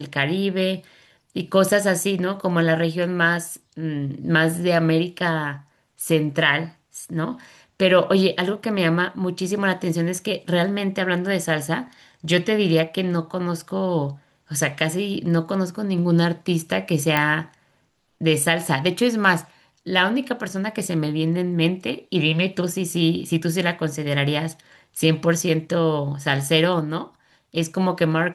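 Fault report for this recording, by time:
17.17 s: pop -6 dBFS

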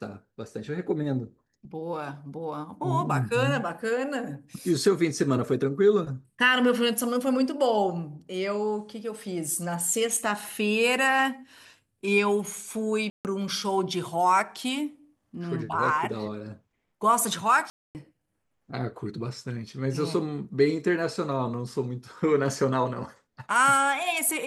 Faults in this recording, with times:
13.10–13.25 s: dropout 148 ms
17.70–17.95 s: dropout 249 ms

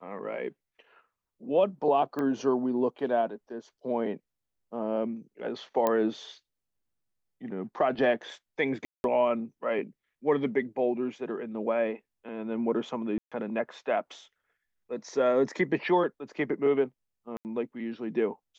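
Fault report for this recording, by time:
2.19 s: pop -21 dBFS
5.87 s: pop -13 dBFS
8.85–9.04 s: dropout 191 ms
13.18–13.32 s: dropout 136 ms
17.37–17.45 s: dropout 79 ms

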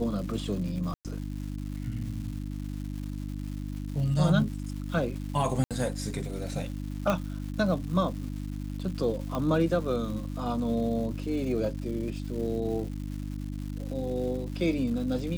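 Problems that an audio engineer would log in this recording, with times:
crackle 410 per s -39 dBFS
hum 50 Hz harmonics 6 -35 dBFS
0.94–1.05 s: dropout 108 ms
5.64–5.71 s: dropout 67 ms
7.10 s: pop -14 dBFS
9.35 s: pop -19 dBFS

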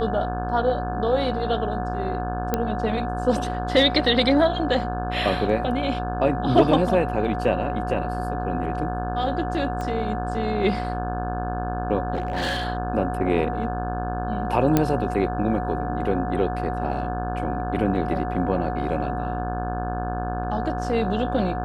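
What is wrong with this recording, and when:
buzz 60 Hz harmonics 29 -29 dBFS
whine 730 Hz -29 dBFS
2.54 s: pop -8 dBFS
9.81 s: pop -19 dBFS
12.14–12.67 s: clipped -21 dBFS
14.77 s: pop -5 dBFS

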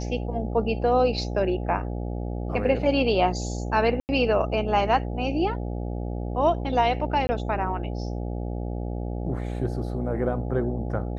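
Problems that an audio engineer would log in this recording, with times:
buzz 60 Hz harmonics 14 -30 dBFS
4.00–4.09 s: dropout 89 ms
7.27–7.29 s: dropout 20 ms

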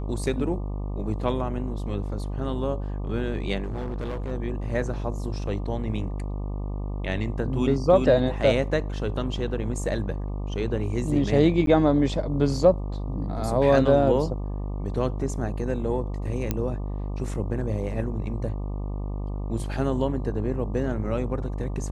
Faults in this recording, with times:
buzz 50 Hz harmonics 24 -30 dBFS
3.64–4.32 s: clipped -27 dBFS
11.66–11.67 s: dropout 12 ms
16.51 s: pop -11 dBFS

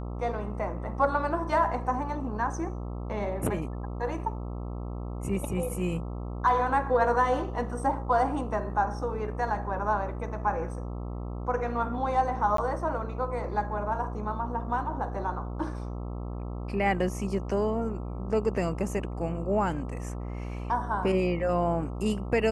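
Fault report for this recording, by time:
buzz 60 Hz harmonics 22 -35 dBFS
12.57–12.58 s: dropout 13 ms

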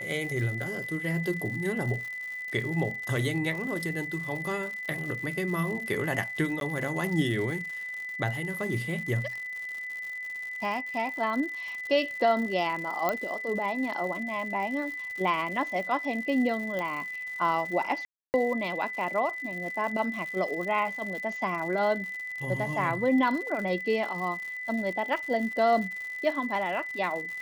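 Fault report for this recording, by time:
crackle 150 per s -36 dBFS
whine 2 kHz -34 dBFS
6.60–6.61 s: dropout
13.09 s: pop -13 dBFS
16.79 s: pop -20 dBFS
18.05–18.34 s: dropout 289 ms

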